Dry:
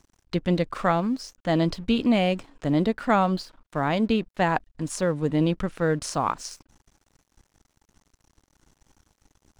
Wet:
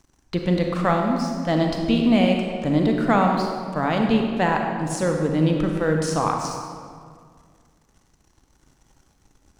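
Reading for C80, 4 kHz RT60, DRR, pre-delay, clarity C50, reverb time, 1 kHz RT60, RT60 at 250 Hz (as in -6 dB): 4.5 dB, 1.3 s, 2.0 dB, 33 ms, 3.0 dB, 2.0 s, 1.9 s, 2.4 s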